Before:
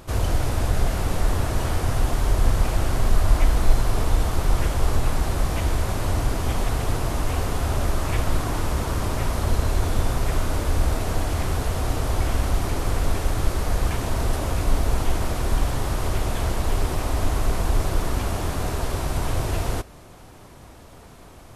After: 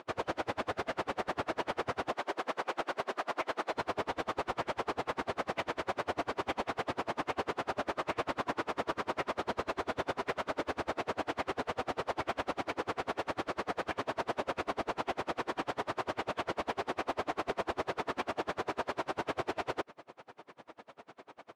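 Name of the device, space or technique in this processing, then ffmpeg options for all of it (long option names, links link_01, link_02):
helicopter radio: -filter_complex "[0:a]asettb=1/sr,asplit=3[link_01][link_02][link_03];[link_01]atrim=end=2.134[link_04];[link_02]atrim=start=2.13:end=3.73,asetpts=PTS-STARTPTS,afade=type=in:duration=0.004:curve=qsin,afade=type=out:start_time=1.596:duration=0.004:curve=qsin,highpass=290[link_05];[link_03]atrim=start=3.726[link_06];[link_04][link_05]acrossfade=duration=0.004:curve1=hsin:curve2=qsin[link_07];[link_07][link_06]acrossfade=duration=0.004:curve1=qsin:curve2=hsin,highpass=360,lowpass=2900,aeval=exprs='val(0)*pow(10,-34*(0.5-0.5*cos(2*PI*10*n/s))/20)':channel_layout=same,asoftclip=type=hard:threshold=-29dB,volume=3.5dB"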